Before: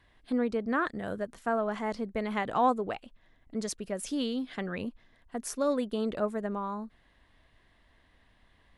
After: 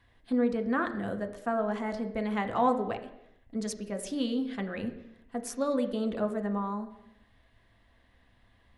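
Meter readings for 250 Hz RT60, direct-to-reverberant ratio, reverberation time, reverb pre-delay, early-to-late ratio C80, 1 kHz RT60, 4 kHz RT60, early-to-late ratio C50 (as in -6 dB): 0.85 s, 5.0 dB, 0.85 s, 3 ms, 13.0 dB, 0.85 s, 0.85 s, 11.0 dB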